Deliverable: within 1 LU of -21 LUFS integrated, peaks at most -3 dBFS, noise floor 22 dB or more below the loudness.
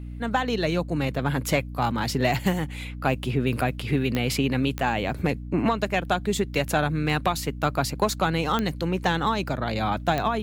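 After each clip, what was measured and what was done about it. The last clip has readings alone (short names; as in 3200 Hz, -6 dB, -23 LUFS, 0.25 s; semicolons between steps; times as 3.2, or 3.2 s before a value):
clicks 4; hum 60 Hz; harmonics up to 300 Hz; hum level -33 dBFS; loudness -25.5 LUFS; peak -9.5 dBFS; loudness target -21.0 LUFS
-> de-click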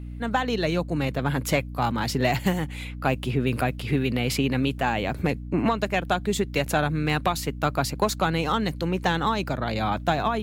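clicks 0; hum 60 Hz; harmonics up to 300 Hz; hum level -33 dBFS
-> de-hum 60 Hz, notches 5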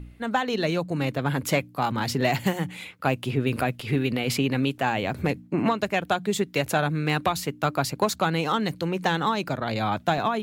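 hum none; loudness -26.0 LUFS; peak -10.0 dBFS; loudness target -21.0 LUFS
-> gain +5 dB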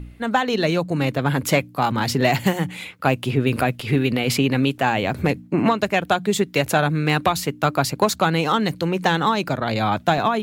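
loudness -21.0 LUFS; peak -5.0 dBFS; noise floor -44 dBFS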